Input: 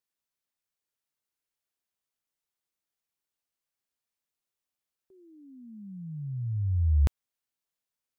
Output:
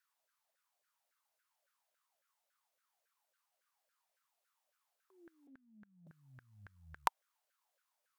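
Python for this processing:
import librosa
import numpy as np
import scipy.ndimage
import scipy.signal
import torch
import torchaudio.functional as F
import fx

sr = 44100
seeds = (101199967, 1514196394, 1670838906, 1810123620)

y = fx.cheby_harmonics(x, sr, harmonics=(2,), levels_db=(-17,), full_scale_db=-16.0)
y = fx.lpc_vocoder(y, sr, seeds[0], excitation='pitch_kept', order=10, at=(5.47, 6.07))
y = fx.filter_lfo_highpass(y, sr, shape='saw_down', hz=3.6, low_hz=520.0, high_hz=1600.0, q=7.9)
y = y * librosa.db_to_amplitude(2.0)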